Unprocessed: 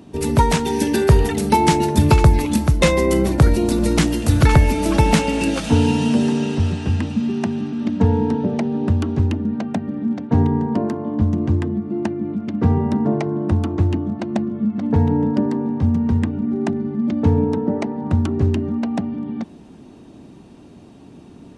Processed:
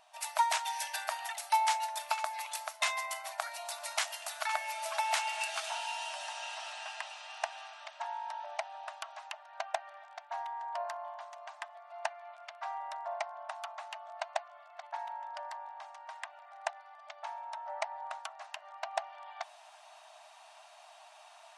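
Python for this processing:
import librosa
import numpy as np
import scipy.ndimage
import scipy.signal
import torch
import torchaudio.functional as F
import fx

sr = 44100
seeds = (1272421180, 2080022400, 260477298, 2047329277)

y = fx.rider(x, sr, range_db=10, speed_s=0.5)
y = fx.brickwall_highpass(y, sr, low_hz=600.0)
y = y * librosa.db_to_amplitude(-8.0)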